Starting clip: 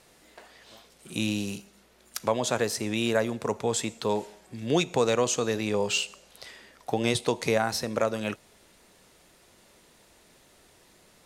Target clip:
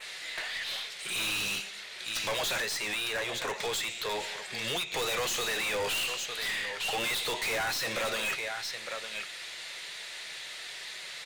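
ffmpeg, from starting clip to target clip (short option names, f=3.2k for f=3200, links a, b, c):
-filter_complex "[0:a]equalizer=f=125:t=o:w=1:g=3,equalizer=f=250:t=o:w=1:g=-12,equalizer=f=1k:t=o:w=1:g=-3,equalizer=f=2k:t=o:w=1:g=10,equalizer=f=4k:t=o:w=1:g=12,equalizer=f=8k:t=o:w=1:g=5,asettb=1/sr,asplit=3[a][b][c];[a]atrim=end=2.604[d];[b]atrim=start=2.6:end=4.93,asetpts=PTS-STARTPTS,afade=t=in:d=0.004:c=qsin,afade=t=out:st=2.326:d=0.004:c=qsin,acompressor=threshold=-29dB:ratio=5[e];[c]atrim=start=4.926[f];[d][e]acrossfade=d=0.004:c1=hsin:c2=qsin[g];[g][f]acrossfade=d=0.004:c1=qsin:c2=hsin,aecho=1:1:904:0.106,asplit=2[h][i];[i]highpass=f=720:p=1,volume=28dB,asoftclip=type=tanh:threshold=-2.5dB[j];[h][j]amix=inputs=2:normalize=0,lowpass=f=4.4k:p=1,volume=-6dB,flanger=delay=4.6:depth=2.2:regen=-57:speed=1.1:shape=triangular,aeval=exprs='(tanh(14.1*val(0)+0.1)-tanh(0.1))/14.1':c=same,adynamicequalizer=threshold=0.0126:dfrequency=4900:dqfactor=1.5:tfrequency=4900:tqfactor=1.5:attack=5:release=100:ratio=0.375:range=2:mode=cutabove:tftype=bell,volume=-5.5dB"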